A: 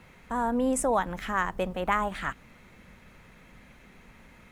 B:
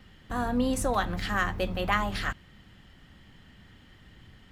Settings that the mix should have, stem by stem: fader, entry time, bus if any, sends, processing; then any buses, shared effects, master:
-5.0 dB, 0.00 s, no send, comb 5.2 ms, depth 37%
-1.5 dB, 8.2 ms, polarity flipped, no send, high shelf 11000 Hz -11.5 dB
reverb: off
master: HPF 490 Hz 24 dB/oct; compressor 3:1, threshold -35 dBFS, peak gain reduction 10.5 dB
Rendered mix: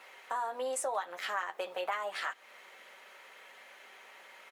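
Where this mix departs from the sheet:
stem A -5.0 dB -> +2.0 dB; stem B: polarity flipped

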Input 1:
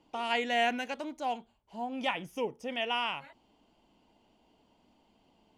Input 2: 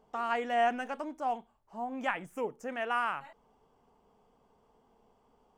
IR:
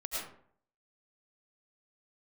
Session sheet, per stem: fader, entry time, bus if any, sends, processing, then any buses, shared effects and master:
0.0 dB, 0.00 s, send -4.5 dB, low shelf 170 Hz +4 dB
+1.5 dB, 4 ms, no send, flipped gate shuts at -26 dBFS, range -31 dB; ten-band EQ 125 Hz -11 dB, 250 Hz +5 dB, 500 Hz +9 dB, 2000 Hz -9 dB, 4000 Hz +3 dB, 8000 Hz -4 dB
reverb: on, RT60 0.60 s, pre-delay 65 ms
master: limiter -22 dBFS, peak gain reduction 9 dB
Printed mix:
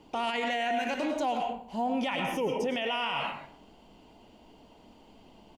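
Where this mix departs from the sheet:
stem 1 0.0 dB -> +6.5 dB; stem 2 +1.5 dB -> -5.5 dB

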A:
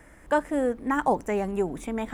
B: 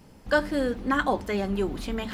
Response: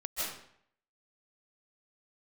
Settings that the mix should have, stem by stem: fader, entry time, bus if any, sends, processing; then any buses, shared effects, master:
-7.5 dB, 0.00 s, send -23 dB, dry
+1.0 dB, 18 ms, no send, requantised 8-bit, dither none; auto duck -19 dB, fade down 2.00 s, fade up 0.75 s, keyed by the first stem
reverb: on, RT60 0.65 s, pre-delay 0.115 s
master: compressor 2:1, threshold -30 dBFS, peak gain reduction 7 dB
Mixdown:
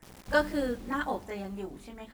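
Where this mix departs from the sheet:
stem A -7.5 dB -> -14.5 dB; master: missing compressor 2:1, threshold -30 dBFS, peak gain reduction 7 dB

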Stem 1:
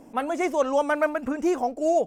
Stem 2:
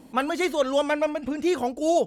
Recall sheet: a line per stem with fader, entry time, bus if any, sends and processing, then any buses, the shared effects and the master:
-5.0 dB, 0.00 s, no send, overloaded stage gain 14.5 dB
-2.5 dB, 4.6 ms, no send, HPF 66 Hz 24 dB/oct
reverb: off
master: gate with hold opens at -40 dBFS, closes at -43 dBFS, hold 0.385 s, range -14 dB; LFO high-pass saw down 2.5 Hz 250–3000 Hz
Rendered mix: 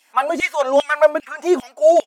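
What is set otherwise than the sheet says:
stem 1 -5.0 dB -> +4.0 dB; master: missing gate with hold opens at -40 dBFS, closes at -43 dBFS, hold 0.385 s, range -14 dB

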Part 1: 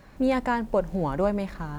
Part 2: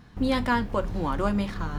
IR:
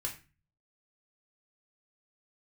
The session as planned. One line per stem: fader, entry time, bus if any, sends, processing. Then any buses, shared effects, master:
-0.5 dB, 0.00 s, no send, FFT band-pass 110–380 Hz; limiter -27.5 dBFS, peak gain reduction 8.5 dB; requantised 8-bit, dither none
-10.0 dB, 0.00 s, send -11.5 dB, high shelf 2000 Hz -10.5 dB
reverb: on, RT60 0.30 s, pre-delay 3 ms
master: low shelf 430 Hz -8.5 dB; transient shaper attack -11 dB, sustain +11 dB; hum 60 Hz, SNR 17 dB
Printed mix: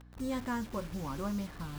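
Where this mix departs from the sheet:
stem 2: polarity flipped; master: missing transient shaper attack -11 dB, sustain +11 dB

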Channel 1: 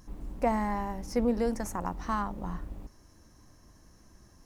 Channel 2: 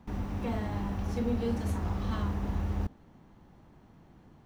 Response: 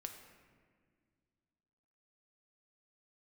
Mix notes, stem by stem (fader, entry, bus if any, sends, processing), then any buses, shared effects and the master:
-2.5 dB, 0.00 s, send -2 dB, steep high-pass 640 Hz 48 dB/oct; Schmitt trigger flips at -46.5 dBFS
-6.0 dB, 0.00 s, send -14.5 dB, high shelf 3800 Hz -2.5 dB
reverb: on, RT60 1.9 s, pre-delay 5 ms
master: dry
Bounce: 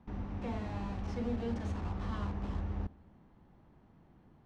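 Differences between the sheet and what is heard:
stem 1 -2.5 dB -> -13.5 dB; master: extra air absorption 120 m

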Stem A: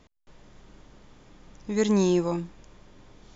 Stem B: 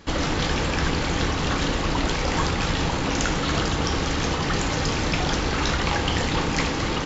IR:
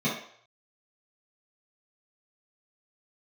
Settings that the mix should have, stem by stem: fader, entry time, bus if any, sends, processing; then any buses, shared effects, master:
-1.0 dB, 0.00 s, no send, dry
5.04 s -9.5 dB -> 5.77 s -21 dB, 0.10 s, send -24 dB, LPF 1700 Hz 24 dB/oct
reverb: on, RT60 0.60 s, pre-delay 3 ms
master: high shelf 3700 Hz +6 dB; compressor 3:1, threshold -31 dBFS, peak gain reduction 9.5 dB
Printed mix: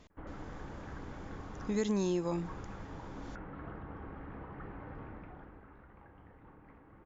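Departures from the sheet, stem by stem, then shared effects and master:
stem B -9.5 dB -> -21.5 dB; master: missing high shelf 3700 Hz +6 dB

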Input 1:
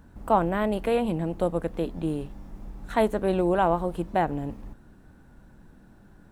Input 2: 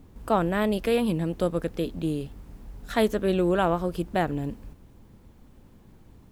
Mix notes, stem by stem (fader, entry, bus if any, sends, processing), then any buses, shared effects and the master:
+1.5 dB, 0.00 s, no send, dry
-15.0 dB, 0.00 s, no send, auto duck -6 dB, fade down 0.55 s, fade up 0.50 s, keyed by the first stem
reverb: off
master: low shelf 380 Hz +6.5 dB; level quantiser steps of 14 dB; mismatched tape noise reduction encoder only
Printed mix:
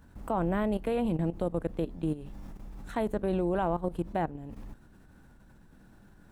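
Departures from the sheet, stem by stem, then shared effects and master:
stem 1 +1.5 dB -> -4.5 dB; stem 2 -15.0 dB -> -24.5 dB

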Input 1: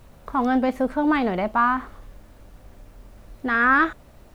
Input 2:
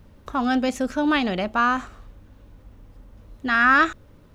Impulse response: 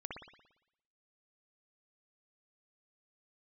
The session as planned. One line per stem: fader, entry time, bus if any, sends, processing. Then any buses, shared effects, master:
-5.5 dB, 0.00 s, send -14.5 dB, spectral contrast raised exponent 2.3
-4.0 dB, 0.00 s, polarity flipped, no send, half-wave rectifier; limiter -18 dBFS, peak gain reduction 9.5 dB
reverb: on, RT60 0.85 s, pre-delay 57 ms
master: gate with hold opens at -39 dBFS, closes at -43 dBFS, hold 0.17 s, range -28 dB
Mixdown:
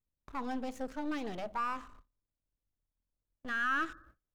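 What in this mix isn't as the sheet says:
stem 1 -5.5 dB -> -15.5 dB; stem 2 -4.0 dB -> -13.0 dB

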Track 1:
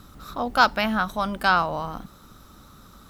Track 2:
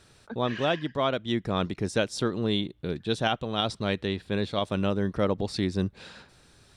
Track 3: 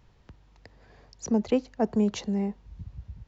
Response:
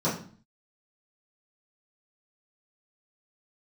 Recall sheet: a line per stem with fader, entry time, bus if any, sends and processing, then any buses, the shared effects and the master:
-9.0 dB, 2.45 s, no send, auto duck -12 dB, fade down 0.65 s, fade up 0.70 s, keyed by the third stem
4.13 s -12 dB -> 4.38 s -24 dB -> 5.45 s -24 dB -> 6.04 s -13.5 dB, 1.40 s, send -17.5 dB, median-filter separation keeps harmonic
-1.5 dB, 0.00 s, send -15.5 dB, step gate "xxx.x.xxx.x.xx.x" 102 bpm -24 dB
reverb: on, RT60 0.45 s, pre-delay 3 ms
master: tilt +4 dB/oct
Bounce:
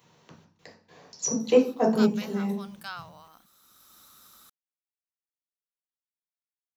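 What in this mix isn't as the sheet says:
stem 1: entry 2.45 s -> 1.40 s; stem 2: muted; reverb return +9.0 dB

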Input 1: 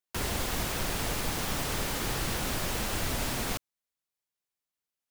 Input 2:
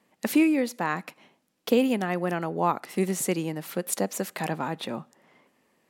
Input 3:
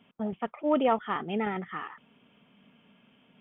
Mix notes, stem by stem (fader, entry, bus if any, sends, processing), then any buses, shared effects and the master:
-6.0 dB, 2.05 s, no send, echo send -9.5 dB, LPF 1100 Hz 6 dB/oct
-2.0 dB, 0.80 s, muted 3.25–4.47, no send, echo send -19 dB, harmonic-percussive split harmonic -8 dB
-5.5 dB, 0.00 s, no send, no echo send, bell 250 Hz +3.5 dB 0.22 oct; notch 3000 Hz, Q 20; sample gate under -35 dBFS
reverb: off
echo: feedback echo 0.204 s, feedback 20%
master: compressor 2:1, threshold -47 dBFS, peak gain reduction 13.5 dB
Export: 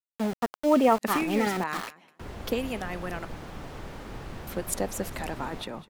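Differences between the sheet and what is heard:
stem 3 -5.5 dB -> +3.5 dB; master: missing compressor 2:1, threshold -47 dBFS, peak gain reduction 13.5 dB

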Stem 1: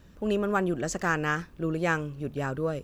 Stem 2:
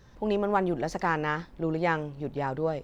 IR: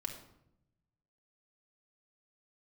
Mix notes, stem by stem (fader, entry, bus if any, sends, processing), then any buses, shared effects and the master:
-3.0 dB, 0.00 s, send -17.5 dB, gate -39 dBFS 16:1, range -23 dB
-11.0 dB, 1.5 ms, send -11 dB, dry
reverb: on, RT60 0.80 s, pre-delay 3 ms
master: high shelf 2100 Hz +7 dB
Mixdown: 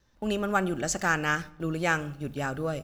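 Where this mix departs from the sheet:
stem 2 -11.0 dB -> -17.5 dB; reverb return +8.5 dB

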